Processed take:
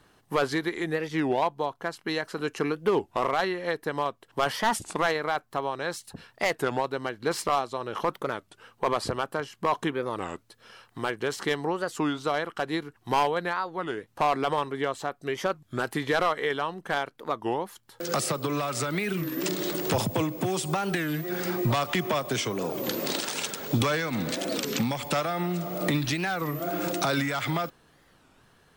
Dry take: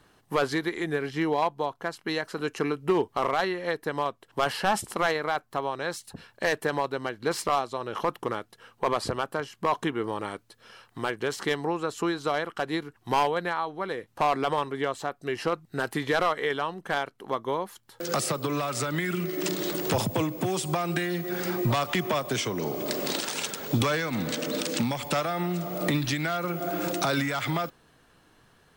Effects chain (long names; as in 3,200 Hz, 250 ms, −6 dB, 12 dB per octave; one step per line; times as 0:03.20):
wow of a warped record 33 1/3 rpm, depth 250 cents